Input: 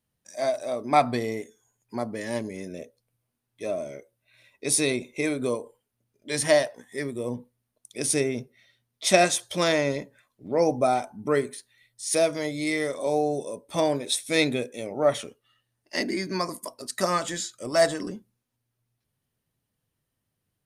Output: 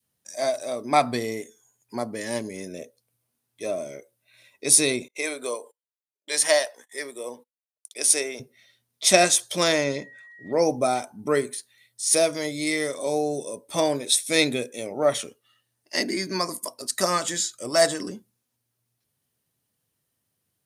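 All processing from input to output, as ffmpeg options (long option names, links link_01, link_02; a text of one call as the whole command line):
ffmpeg -i in.wav -filter_complex "[0:a]asettb=1/sr,asplit=3[link_01][link_02][link_03];[link_01]atrim=end=5.084[link_04];[link_02]atrim=start=5.08:end=8.4,asetpts=PTS-STARTPTS,afade=type=in:duration=0.004:curve=qsin,afade=type=out:start_time=3.316:duration=0.004:curve=qsin,highpass=530,agate=range=-28dB:threshold=-57dB:ratio=16:release=100:detection=peak[link_05];[link_03]atrim=start=8.396[link_06];[link_04][link_05]acrossfade=duration=0.004:curve1=hsin:curve2=qsin[link_07];[link_07][link_06]acrossfade=duration=0.004:curve1=qsin:curve2=hsin,asettb=1/sr,asplit=3[link_08][link_09][link_10];[link_08]atrim=end=9.844[link_11];[link_09]atrim=start=9.84:end=10.53,asetpts=PTS-STARTPTS,afade=type=in:duration=0.004:curve=qsin,afade=type=out:start_time=0.686:duration=0.004:curve=qsin,lowpass=7200,aeval=exprs='val(0)+0.00447*sin(2*PI*1900*n/s)':channel_layout=same[link_12];[link_10]atrim=start=10.526[link_13];[link_11][link_12]acrossfade=duration=0.004:curve1=hsin:curve2=qsin[link_14];[link_14][link_13]acrossfade=duration=0.004:curve1=qsin:curve2=hsin,adynamicequalizer=threshold=0.0158:dfrequency=770:dqfactor=1.2:tfrequency=770:tqfactor=1.2:attack=5:release=100:ratio=0.375:range=2.5:mode=cutabove:tftype=bell,highpass=73,bass=frequency=250:gain=-3,treble=frequency=4000:gain=6,volume=1.5dB" out.wav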